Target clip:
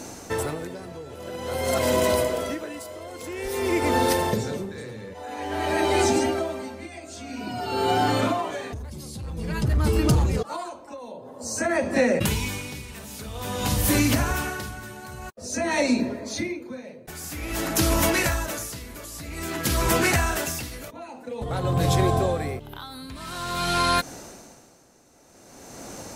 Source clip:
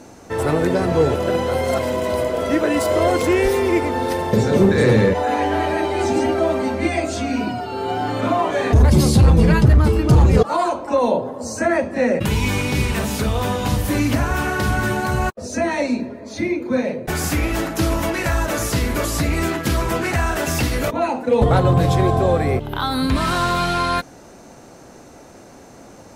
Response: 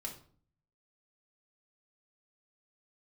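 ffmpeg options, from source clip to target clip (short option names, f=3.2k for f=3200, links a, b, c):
-af "highshelf=f=3.6k:g=10,acompressor=threshold=-19dB:ratio=6,aeval=exprs='val(0)*pow(10,-19*(0.5-0.5*cos(2*PI*0.5*n/s))/20)':c=same,volume=2.5dB"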